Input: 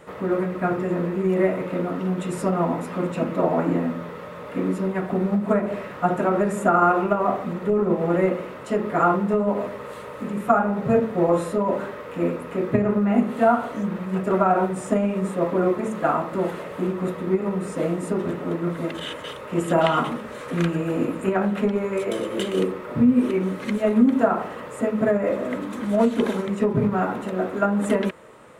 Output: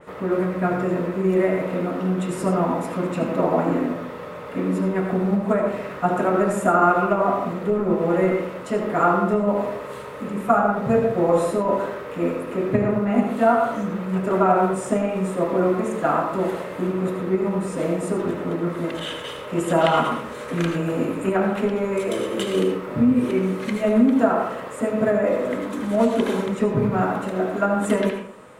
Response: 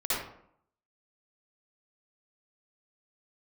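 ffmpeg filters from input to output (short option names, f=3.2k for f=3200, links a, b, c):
-filter_complex "[0:a]asplit=2[a][b];[1:a]atrim=start_sample=2205,asetrate=52920,aresample=44100,adelay=27[c];[b][c]afir=irnorm=-1:irlink=0,volume=-11.5dB[d];[a][d]amix=inputs=2:normalize=0,adynamicequalizer=threshold=0.0158:dfrequency=3400:dqfactor=0.7:tfrequency=3400:tqfactor=0.7:attack=5:release=100:ratio=0.375:range=1.5:mode=boostabove:tftype=highshelf"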